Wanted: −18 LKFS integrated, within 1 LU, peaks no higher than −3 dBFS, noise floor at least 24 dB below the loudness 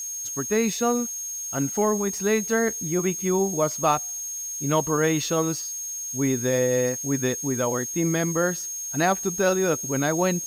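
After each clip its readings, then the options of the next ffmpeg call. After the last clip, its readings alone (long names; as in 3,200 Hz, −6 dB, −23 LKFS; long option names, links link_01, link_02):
interfering tone 6,500 Hz; level of the tone −30 dBFS; background noise floor −33 dBFS; target noise floor −48 dBFS; integrated loudness −24.0 LKFS; sample peak −8.5 dBFS; target loudness −18.0 LKFS
→ -af "bandreject=frequency=6500:width=30"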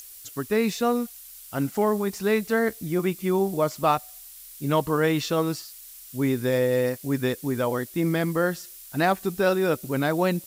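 interfering tone none found; background noise floor −45 dBFS; target noise floor −49 dBFS
→ -af "afftdn=noise_reduction=6:noise_floor=-45"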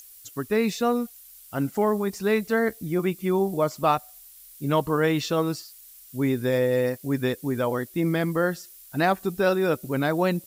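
background noise floor −49 dBFS; integrated loudness −25.0 LKFS; sample peak −9.0 dBFS; target loudness −18.0 LKFS
→ -af "volume=7dB,alimiter=limit=-3dB:level=0:latency=1"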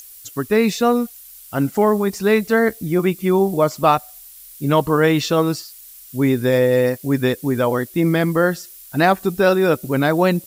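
integrated loudness −18.0 LKFS; sample peak −3.0 dBFS; background noise floor −42 dBFS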